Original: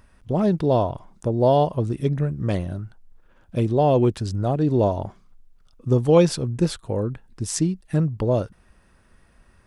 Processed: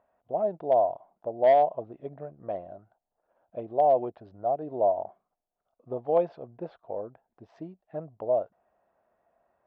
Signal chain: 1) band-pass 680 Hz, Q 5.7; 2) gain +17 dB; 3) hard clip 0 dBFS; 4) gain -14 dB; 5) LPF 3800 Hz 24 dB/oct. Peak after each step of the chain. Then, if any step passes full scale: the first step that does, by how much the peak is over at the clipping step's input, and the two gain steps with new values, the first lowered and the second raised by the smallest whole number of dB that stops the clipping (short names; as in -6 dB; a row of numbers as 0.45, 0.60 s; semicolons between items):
-13.0, +4.0, 0.0, -14.0, -13.5 dBFS; step 2, 4.0 dB; step 2 +13 dB, step 4 -10 dB